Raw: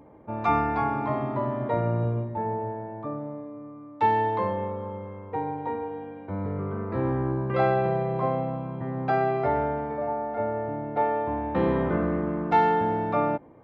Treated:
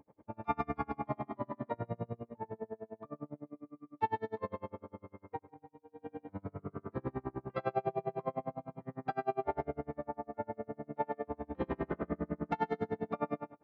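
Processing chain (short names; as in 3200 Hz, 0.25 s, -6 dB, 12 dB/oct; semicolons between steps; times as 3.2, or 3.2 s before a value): 5.39–6.22 negative-ratio compressor -39 dBFS, ratio -0.5; on a send: feedback echo 0.15 s, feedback 17%, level -6 dB; on the sum: dB-linear tremolo 9.9 Hz, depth 36 dB; gain -6.5 dB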